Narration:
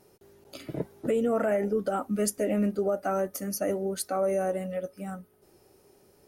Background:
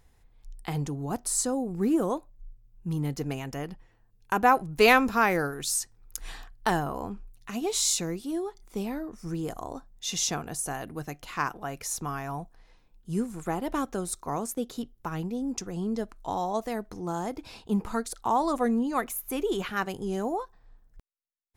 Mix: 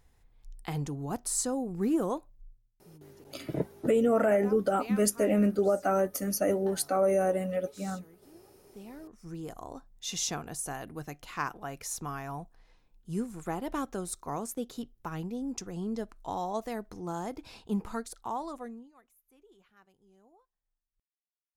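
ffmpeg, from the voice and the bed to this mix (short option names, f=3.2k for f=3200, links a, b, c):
-filter_complex "[0:a]adelay=2800,volume=1.5dB[a];[1:a]volume=18.5dB,afade=t=out:st=2.31:d=0.45:silence=0.0749894,afade=t=in:st=8.51:d=1.44:silence=0.0841395,afade=t=out:st=17.73:d=1.19:silence=0.0375837[b];[a][b]amix=inputs=2:normalize=0"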